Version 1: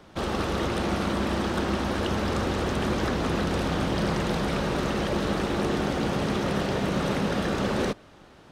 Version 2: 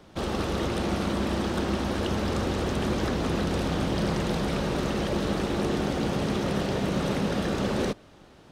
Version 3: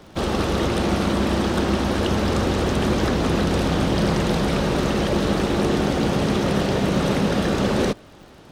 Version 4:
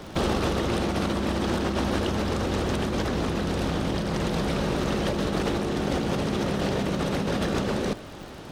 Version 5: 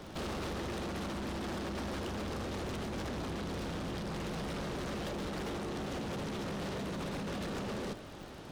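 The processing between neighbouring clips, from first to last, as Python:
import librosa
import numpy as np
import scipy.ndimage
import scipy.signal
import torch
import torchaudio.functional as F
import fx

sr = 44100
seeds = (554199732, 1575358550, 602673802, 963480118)

y1 = fx.peak_eq(x, sr, hz=1400.0, db=-3.5, octaves=1.9)
y2 = fx.dmg_crackle(y1, sr, seeds[0], per_s=100.0, level_db=-49.0)
y2 = y2 * librosa.db_to_amplitude(6.5)
y3 = fx.over_compress(y2, sr, threshold_db=-26.0, ratio=-1.0)
y4 = np.clip(10.0 ** (29.0 / 20.0) * y3, -1.0, 1.0) / 10.0 ** (29.0 / 20.0)
y4 = y4 * librosa.db_to_amplitude(-7.0)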